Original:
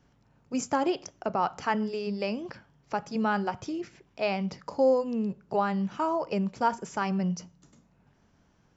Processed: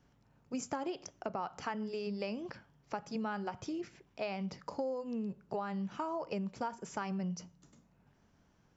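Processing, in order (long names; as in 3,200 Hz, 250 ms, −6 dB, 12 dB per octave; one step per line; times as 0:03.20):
downward compressor 6 to 1, threshold −30 dBFS, peak gain reduction 11.5 dB
level −4 dB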